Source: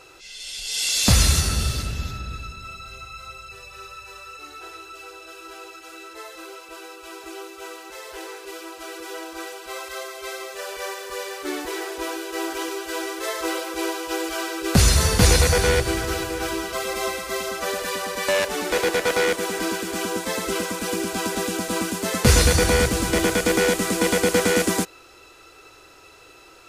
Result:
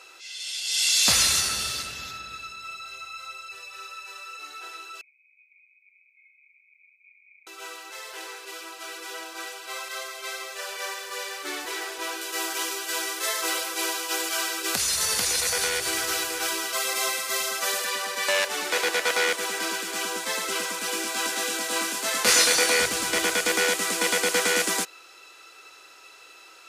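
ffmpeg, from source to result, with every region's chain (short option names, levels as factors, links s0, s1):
-filter_complex "[0:a]asettb=1/sr,asplit=3[s0][s1][s2];[s0]atrim=end=5.014[s3];[s1]atrim=start=5.01:end=7.47,asetpts=PTS-STARTPTS,afade=t=in:d=0.004:c=qsin,afade=t=out:st=2.456:d=0.004:c=qsin,aeval=exprs='val(0)*sin(2*PI*95*n/s)':c=same,asuperpass=centerf=2300:order=20:qfactor=6[s4];[s2]atrim=start=7.466[s5];[s3][s4]acrossfade=d=0.004:c1=hsin:c2=qsin[s6];[s6][s5]acrossfade=d=0.004:c1=qsin:c2=hsin,asettb=1/sr,asplit=3[s7][s8][s9];[s7]atrim=end=12.214[s10];[s8]atrim=start=12.21:end=17.85,asetpts=PTS-STARTPTS,afade=t=in:d=0.004:c=qsin,afade=t=out:st=5.636:d=0.004:c=qsin,highshelf=f=5800:g=8,acompressor=threshold=0.126:ratio=10:attack=3.2:release=140:knee=1:detection=peak[s11];[s9]atrim=start=17.846[s12];[s10][s11]acrossfade=d=0.004:c1=hsin:c2=qsin[s13];[s13][s12]acrossfade=d=0.004:c1=qsin:c2=hsin,asettb=1/sr,asplit=3[s14][s15][s16];[s14]atrim=end=20.914[s17];[s15]atrim=start=20.91:end=22.8,asetpts=PTS-STARTPTS,afade=t=in:d=0.004:c=qsin,afade=t=out:st=1.886:d=0.004:c=qsin,highpass=230,asplit=2[s18][s19];[s19]adelay=24,volume=0.531[s20];[s18][s20]amix=inputs=2:normalize=0,atrim=end_sample=83349[s21];[s16]atrim=start=22.796[s22];[s17][s21]acrossfade=d=0.004:c1=hsin:c2=qsin[s23];[s23][s22]acrossfade=d=0.004:c1=qsin:c2=hsin,highpass=f=1400:p=1,highshelf=f=9900:g=-4.5,volume=1.33"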